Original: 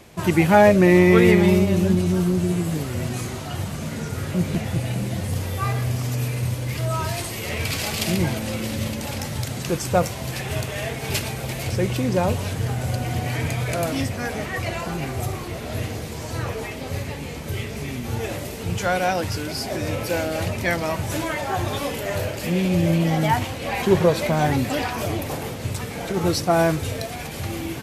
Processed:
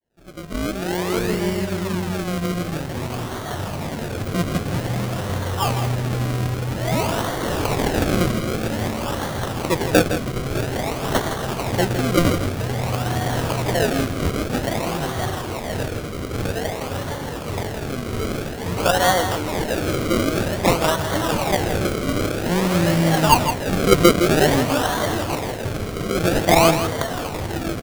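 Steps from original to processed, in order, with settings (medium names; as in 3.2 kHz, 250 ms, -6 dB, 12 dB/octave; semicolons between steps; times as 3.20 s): fade-in on the opening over 4.01 s; bass shelf 380 Hz -9 dB; decimation with a swept rate 34×, swing 100% 0.51 Hz; on a send: delay 163 ms -9 dB; on the sum: trim +7 dB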